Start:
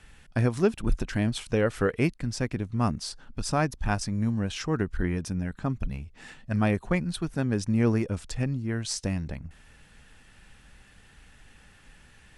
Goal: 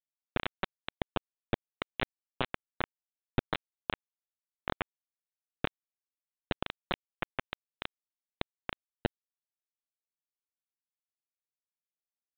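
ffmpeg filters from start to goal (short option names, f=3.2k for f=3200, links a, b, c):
-filter_complex "[0:a]acompressor=threshold=-38dB:ratio=8,asplit=2[a][b];[b]asetrate=33038,aresample=44100,atempo=1.33484,volume=-10dB[c];[a][c]amix=inputs=2:normalize=0,aresample=8000,acrusher=bits=4:mix=0:aa=0.000001,aresample=44100,volume=8.5dB"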